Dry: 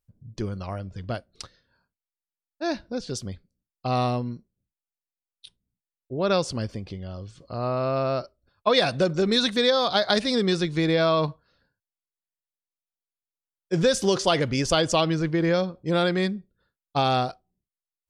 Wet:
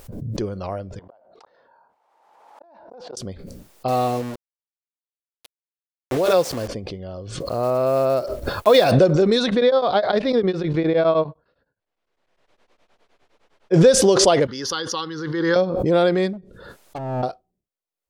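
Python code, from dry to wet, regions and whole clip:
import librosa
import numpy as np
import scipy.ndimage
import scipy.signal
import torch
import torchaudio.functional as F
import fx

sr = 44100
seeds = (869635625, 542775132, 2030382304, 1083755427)

y = fx.chain(x, sr, fx.bandpass_q(hz=870.0, q=4.5),
    fx.gate_flip(shuts_db=-41.0, range_db=-38),
    fx.env_flatten(amount_pct=70), at=(0.99, 3.17))
y = fx.chain(y, sr, fx.low_shelf(hz=79.0, db=-6.0),
    fx.notch_comb(f0_hz=200.0),
    fx.quant_dither(seeds[0], bits=6, dither='none'), at=(3.88, 6.68))
y = fx.chain(y, sr, fx.block_float(bits=5),
    fx.high_shelf(hz=8100.0, db=3.0), at=(7.4, 8.93))
y = fx.chain(y, sr, fx.lowpass(hz=3100.0, slope=12),
    fx.tremolo_abs(hz=9.8), at=(9.46, 13.74))
y = fx.chain(y, sr, fx.highpass(hz=750.0, slope=6),
    fx.fixed_phaser(hz=2400.0, stages=6), at=(14.47, 15.56))
y = fx.chain(y, sr, fx.env_lowpass_down(base_hz=340.0, full_db=-21.0),
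    fx.overload_stage(gain_db=32.5), at=(16.33, 17.23))
y = fx.peak_eq(y, sr, hz=520.0, db=10.0, octaves=1.8)
y = fx.pre_swell(y, sr, db_per_s=37.0)
y = F.gain(torch.from_numpy(y), -2.0).numpy()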